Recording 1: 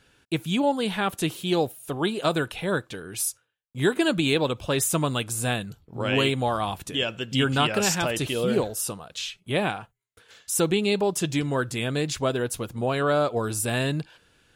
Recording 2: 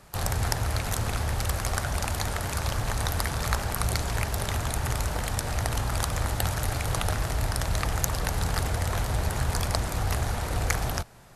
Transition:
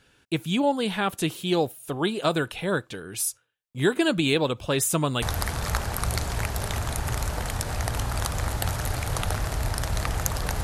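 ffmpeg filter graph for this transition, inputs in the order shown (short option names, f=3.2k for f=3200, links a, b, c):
-filter_complex "[0:a]apad=whole_dur=10.63,atrim=end=10.63,atrim=end=5.222[a];[1:a]atrim=start=2.998:end=8.41[b];[a][b]acrossfade=d=0.004:c1=hsin:c2=hsin"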